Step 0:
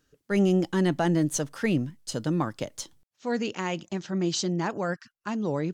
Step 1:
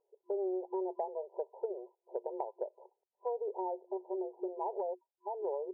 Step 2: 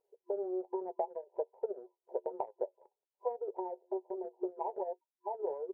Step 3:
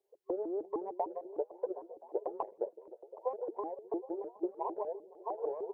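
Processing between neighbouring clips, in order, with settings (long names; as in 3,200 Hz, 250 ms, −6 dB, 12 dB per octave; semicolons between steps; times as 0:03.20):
brick-wall band-pass 360–1,000 Hz; downward compressor 6 to 1, threshold −34 dBFS, peak gain reduction 10.5 dB; level +1 dB
flanger 1.2 Hz, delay 9.5 ms, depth 2.6 ms, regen +41%; transient designer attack +4 dB, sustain −8 dB; level +2.5 dB
on a send: echo through a band-pass that steps 256 ms, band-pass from 220 Hz, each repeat 0.7 octaves, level −8.5 dB; on the sum: pitch modulation by a square or saw wave saw up 6.6 Hz, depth 250 cents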